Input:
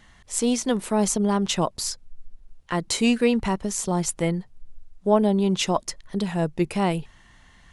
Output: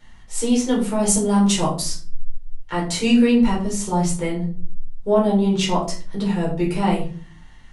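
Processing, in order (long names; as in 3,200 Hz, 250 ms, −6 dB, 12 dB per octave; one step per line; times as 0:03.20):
0:01.08–0:01.82: parametric band 9,400 Hz +10.5 dB 0.99 octaves
convolution reverb RT60 0.40 s, pre-delay 6 ms, DRR −4.5 dB
level −6 dB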